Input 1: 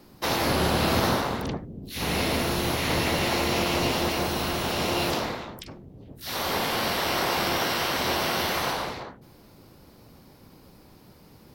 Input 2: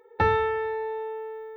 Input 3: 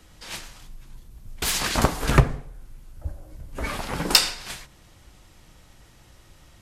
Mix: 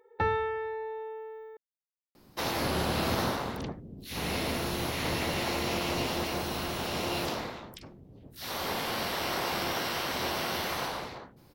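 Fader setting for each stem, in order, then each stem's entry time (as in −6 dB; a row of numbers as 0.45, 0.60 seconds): −6.0 dB, −6.0 dB, muted; 2.15 s, 0.00 s, muted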